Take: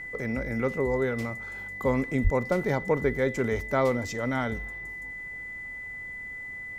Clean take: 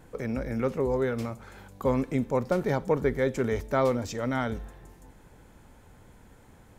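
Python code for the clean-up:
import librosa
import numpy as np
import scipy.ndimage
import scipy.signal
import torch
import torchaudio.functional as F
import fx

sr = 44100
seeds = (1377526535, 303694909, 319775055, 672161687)

y = fx.notch(x, sr, hz=2000.0, q=30.0)
y = fx.fix_deplosive(y, sr, at_s=(2.23,))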